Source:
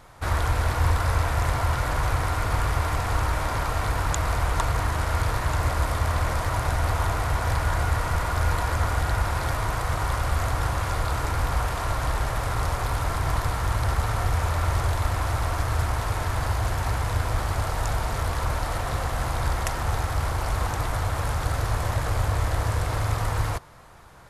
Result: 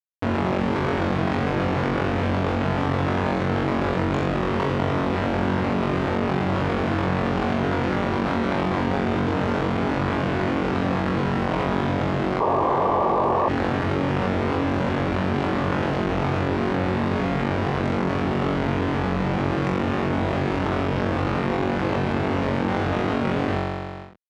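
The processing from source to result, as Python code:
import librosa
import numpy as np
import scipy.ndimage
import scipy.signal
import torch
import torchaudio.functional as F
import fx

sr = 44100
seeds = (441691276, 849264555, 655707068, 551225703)

y = fx.schmitt(x, sr, flips_db=-23.5)
y = fx.bandpass_edges(y, sr, low_hz=170.0, high_hz=2500.0)
y = fx.room_flutter(y, sr, wall_m=3.7, rt60_s=0.6)
y = fx.spec_paint(y, sr, seeds[0], shape='noise', start_s=12.4, length_s=1.09, low_hz=320.0, high_hz=1200.0, level_db=-20.0)
y = fx.env_flatten(y, sr, amount_pct=70)
y = F.gain(torch.from_numpy(y), -2.0).numpy()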